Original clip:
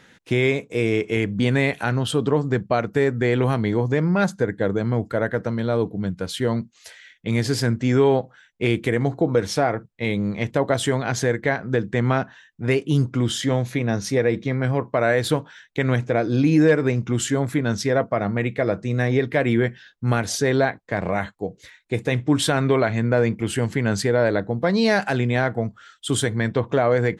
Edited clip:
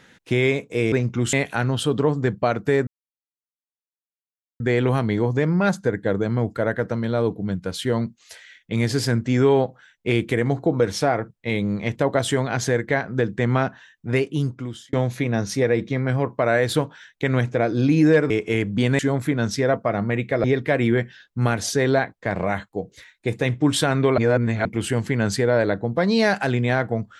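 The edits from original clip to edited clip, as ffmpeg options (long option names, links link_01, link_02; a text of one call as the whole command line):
ffmpeg -i in.wav -filter_complex "[0:a]asplit=10[link_01][link_02][link_03][link_04][link_05][link_06][link_07][link_08][link_09][link_10];[link_01]atrim=end=0.922[link_11];[link_02]atrim=start=16.848:end=17.262[link_12];[link_03]atrim=start=1.608:end=3.15,asetpts=PTS-STARTPTS,afade=type=out:start_time=1.538:duration=0.004:curve=hsin,apad=pad_dur=1.73[link_13];[link_04]atrim=start=3.15:end=13.48,asetpts=PTS-STARTPTS,afade=type=in:duration=0.004:curve=hsin,afade=type=out:start_time=9.52:duration=0.81[link_14];[link_05]atrim=start=13.48:end=16.852,asetpts=PTS-STARTPTS,afade=type=in:duration=0.004:curve=hsin[link_15];[link_06]atrim=start=0.918:end=1.612[link_16];[link_07]atrim=start=17.258:end=18.712[link_17];[link_08]atrim=start=19.098:end=22.842[link_18];[link_09]atrim=start=22.838:end=23.312,asetpts=PTS-STARTPTS,areverse[link_19];[link_10]atrim=start=23.308[link_20];[link_11][link_12]acrossfade=duration=0.004:curve1=hsin:curve2=hsin[link_21];[link_13][link_14][link_15]concat=n=3:v=0:a=1[link_22];[link_21][link_22]acrossfade=duration=0.004:curve1=hsin:curve2=hsin[link_23];[link_23][link_16]acrossfade=duration=0.004:curve1=hsin:curve2=hsin[link_24];[link_24][link_17]acrossfade=duration=0.004:curve1=hsin:curve2=hsin[link_25];[link_25][link_18]acrossfade=duration=0.004:curve1=hsin:curve2=hsin[link_26];[link_26][link_19]acrossfade=duration=0.004:curve1=hsin:curve2=hsin[link_27];[link_27][link_20]acrossfade=duration=0.004:curve1=hsin:curve2=hsin" out.wav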